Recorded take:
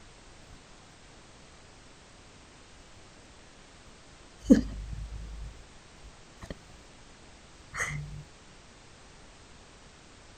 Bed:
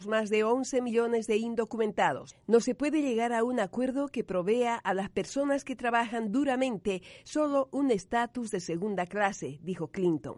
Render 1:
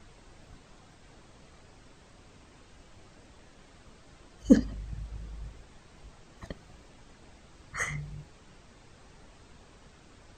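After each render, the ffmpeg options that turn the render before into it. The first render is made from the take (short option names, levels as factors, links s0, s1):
-af "afftdn=nr=6:nf=-54"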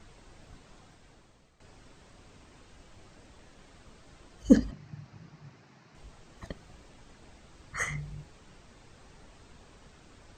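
-filter_complex "[0:a]asettb=1/sr,asplit=3[s0][s1][s2];[s0]atrim=end=4.714[s3];[s1]atrim=start=4.71:end=5.95,asetpts=PTS-STARTPTS,afade=t=in:d=0.004:c=qsin,afade=t=out:st=1.236:d=0.004:c=qsin,highpass=f=120:w=0.5412,highpass=f=120:w=1.3066,equalizer=f=140:t=q:w=4:g=4,equalizer=f=490:t=q:w=4:g=-8,equalizer=f=3400:t=q:w=4:g=-8,lowpass=f=5900:w=0.5412,lowpass=f=5900:w=1.3066[s4];[s2]atrim=start=5.946[s5];[s3][s4]acrossfade=d=0.004:c1=hsin:c2=qsin[s6];[s6][s5]acrossfade=d=0.004:c1=qsin:c2=hsin,asplit=2[s7][s8];[s7]atrim=end=1.6,asetpts=PTS-STARTPTS,afade=t=out:st=0.8:d=0.8:silence=0.223872[s9];[s8]atrim=start=1.6,asetpts=PTS-STARTPTS,afade=t=in:d=0.004:c=hsin:silence=0.223872[s10];[s9][s10]concat=n=2:v=0:a=1"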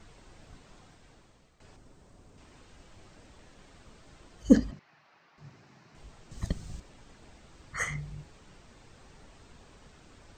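-filter_complex "[0:a]asettb=1/sr,asplit=3[s0][s1][s2];[s0]atrim=end=1.764[s3];[s1]atrim=start=1.76:end=2.38,asetpts=PTS-STARTPTS,afade=t=in:d=0.004:c=qsin,afade=t=out:st=0.616:d=0.004:c=qsin,equalizer=f=2800:w=0.45:g=-9[s4];[s2]atrim=start=2.376[s5];[s3][s4]acrossfade=d=0.004:c1=hsin:c2=qsin[s6];[s6][s5]acrossfade=d=0.004:c1=qsin:c2=hsin,asettb=1/sr,asplit=3[s7][s8][s9];[s7]atrim=end=4.794[s10];[s8]atrim=start=4.79:end=5.38,asetpts=PTS-STARTPTS,afade=t=in:d=0.004:c=qsin,afade=t=out:st=0.586:d=0.004:c=qsin,highpass=690,lowpass=3800[s11];[s9]atrim=start=5.376[s12];[s10][s11]acrossfade=d=0.004:c1=hsin:c2=qsin[s13];[s13][s12]acrossfade=d=0.004:c1=qsin:c2=hsin,asettb=1/sr,asplit=3[s14][s15][s16];[s14]atrim=end=6.314[s17];[s15]atrim=start=6.31:end=6.8,asetpts=PTS-STARTPTS,afade=t=in:d=0.004:c=qsin,afade=t=out:st=0.486:d=0.004:c=qsin,bass=f=250:g=13,treble=f=4000:g=11[s18];[s16]atrim=start=6.796[s19];[s17][s18]acrossfade=d=0.004:c1=hsin:c2=qsin[s20];[s20][s19]acrossfade=d=0.004:c1=qsin:c2=hsin"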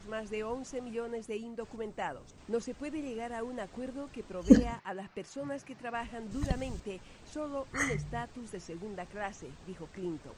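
-filter_complex "[1:a]volume=0.299[s0];[0:a][s0]amix=inputs=2:normalize=0"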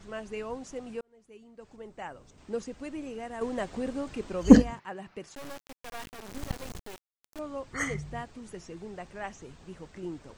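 -filter_complex "[0:a]asettb=1/sr,asplit=3[s0][s1][s2];[s0]atrim=end=3.414[s3];[s1]atrim=start=3.41:end=4.62,asetpts=PTS-STARTPTS,afade=t=in:d=0.004:c=qsin,afade=t=out:st=1.206:d=0.004:c=qsin,acontrast=81[s4];[s2]atrim=start=4.616[s5];[s3][s4]acrossfade=d=0.004:c1=hsin:c2=qsin[s6];[s6][s5]acrossfade=d=0.004:c1=qsin:c2=hsin,asettb=1/sr,asplit=3[s7][s8][s9];[s7]atrim=end=5.354[s10];[s8]atrim=start=5.35:end=7.39,asetpts=PTS-STARTPTS,afade=t=in:d=0.004:c=qsin,afade=t=out:st=2.036:d=0.004:c=qsin,acrusher=bits=4:dc=4:mix=0:aa=0.000001[s11];[s9]atrim=start=7.386[s12];[s10][s11]acrossfade=d=0.004:c1=hsin:c2=qsin[s13];[s13][s12]acrossfade=d=0.004:c1=qsin:c2=hsin,asplit=2[s14][s15];[s14]atrim=end=1.01,asetpts=PTS-STARTPTS,afade=t=out:st=1.006:d=0.004:c=hsin[s16];[s15]atrim=start=1.01,asetpts=PTS-STARTPTS,afade=t=in:d=1.58[s17];[s16][s17]concat=n=2:v=0:a=1"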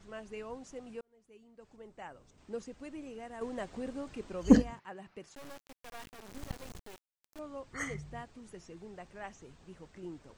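-af "volume=0.473"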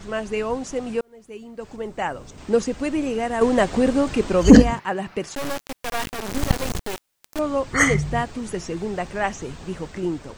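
-af "dynaudnorm=f=750:g=3:m=1.41,alimiter=level_in=7.94:limit=0.891:release=50:level=0:latency=1"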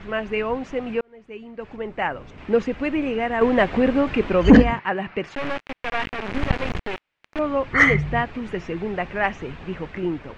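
-af "lowpass=f=2400:t=q:w=1.8,asoftclip=type=tanh:threshold=0.794"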